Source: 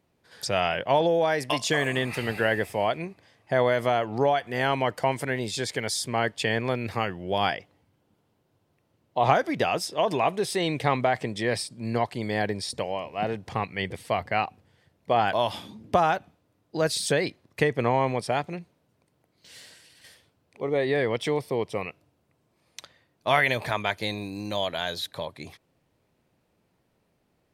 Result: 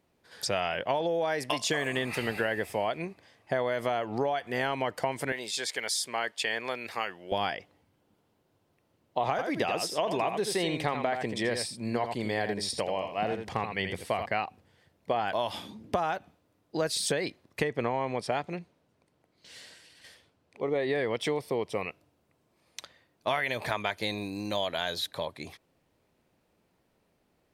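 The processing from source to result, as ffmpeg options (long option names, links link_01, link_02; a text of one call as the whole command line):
ffmpeg -i in.wav -filter_complex "[0:a]asettb=1/sr,asplit=3[link_01][link_02][link_03];[link_01]atrim=end=5.324[link_04];[link_02]atrim=start=5.32:end=7.32,asetpts=PTS-STARTPTS,afade=type=in:duration=0.004:curve=qsin,afade=type=out:start_time=1.996:duration=0.004:curve=qsin,highpass=frequency=960:poles=1[link_05];[link_03]atrim=start=7.316[link_06];[link_04][link_05]acrossfade=duration=0.004:curve1=hsin:curve2=qsin[link_07];[link_07][link_06]acrossfade=duration=0.004:curve1=qsin:curve2=hsin,asettb=1/sr,asplit=3[link_08][link_09][link_10];[link_08]atrim=end=9.304[link_11];[link_09]atrim=start=9.3:end=14.26,asetpts=PTS-STARTPTS,afade=type=in:duration=0.004:curve=qsin,afade=type=out:start_time=4.956:duration=0.004:curve=qsin,aecho=1:1:83:0.398,atrim=end_sample=218736[link_12];[link_10]atrim=start=14.256[link_13];[link_11][link_12]acrossfade=duration=0.004:curve1=hsin:curve2=qsin[link_14];[link_14][link_13]acrossfade=duration=0.004:curve1=qsin:curve2=hsin,asettb=1/sr,asplit=3[link_15][link_16][link_17];[link_15]atrim=end=17.644[link_18];[link_16]atrim=start=17.64:end=20.9,asetpts=PTS-STARTPTS,afade=type=in:duration=0.004:curve=qsin,afade=type=out:start_time=3.256:duration=0.004:curve=qsin,highshelf=frequency=11000:gain=-11[link_19];[link_17]atrim=start=20.896[link_20];[link_18][link_19]acrossfade=duration=0.004:curve1=hsin:curve2=qsin[link_21];[link_21][link_20]acrossfade=duration=0.004:curve1=qsin:curve2=hsin,equalizer=frequency=120:width_type=o:width=1.1:gain=-4.5,acompressor=threshold=-25dB:ratio=6" out.wav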